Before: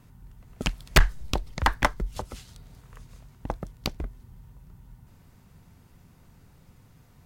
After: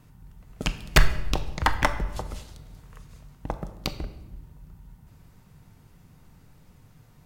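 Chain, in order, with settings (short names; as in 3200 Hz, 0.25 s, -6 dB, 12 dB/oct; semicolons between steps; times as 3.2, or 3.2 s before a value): shoebox room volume 590 m³, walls mixed, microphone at 0.51 m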